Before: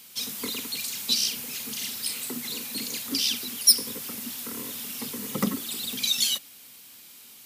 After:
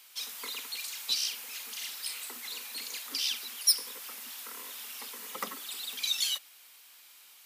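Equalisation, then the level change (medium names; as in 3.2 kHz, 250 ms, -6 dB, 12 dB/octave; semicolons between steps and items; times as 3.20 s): high-pass 880 Hz 12 dB/octave; treble shelf 2.8 kHz -8 dB; 0.0 dB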